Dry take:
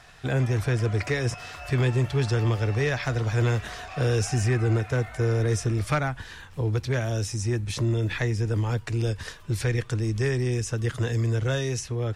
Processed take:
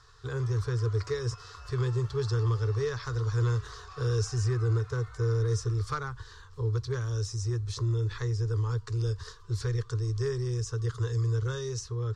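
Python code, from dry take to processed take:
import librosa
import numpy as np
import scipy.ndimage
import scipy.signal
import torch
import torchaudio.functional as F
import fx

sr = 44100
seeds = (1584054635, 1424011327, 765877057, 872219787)

y = fx.curve_eq(x, sr, hz=(120.0, 180.0, 290.0, 430.0, 660.0, 1100.0, 2400.0, 4400.0, 7200.0, 11000.0), db=(0, -22, -16, 2, -24, 3, -18, 0, -4, -16))
y = y * 10.0 ** (-2.5 / 20.0)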